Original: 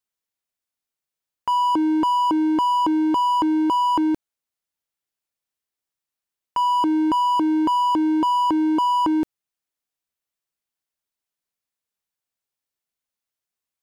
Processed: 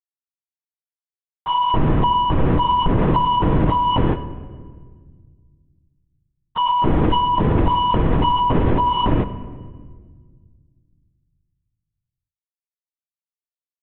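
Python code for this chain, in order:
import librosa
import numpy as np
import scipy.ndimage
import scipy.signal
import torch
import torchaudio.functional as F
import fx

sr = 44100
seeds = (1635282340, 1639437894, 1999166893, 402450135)

y = fx.cvsd(x, sr, bps=64000)
y = fx.highpass(y, sr, hz=160.0, slope=6)
y = fx.leveller(y, sr, passes=5)
y = fx.lpc_vocoder(y, sr, seeds[0], excitation='whisper', order=10)
y = fx.high_shelf(y, sr, hz=2600.0, db=-9.0)
y = fx.room_shoebox(y, sr, seeds[1], volume_m3=2100.0, walls='mixed', distance_m=0.57)
y = fx.end_taper(y, sr, db_per_s=200.0)
y = y * librosa.db_to_amplitude(-1.5)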